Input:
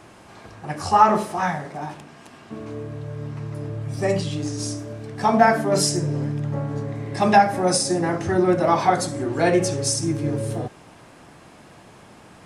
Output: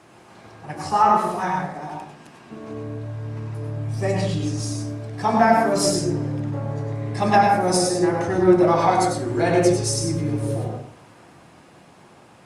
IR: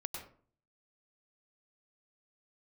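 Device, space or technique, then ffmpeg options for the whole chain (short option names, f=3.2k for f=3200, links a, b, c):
far-field microphone of a smart speaker: -filter_complex "[1:a]atrim=start_sample=2205[a];[0:a][a]afir=irnorm=-1:irlink=0,highpass=100,dynaudnorm=f=400:g=11:m=3dB,volume=-1dB" -ar 48000 -c:a libopus -b:a 48k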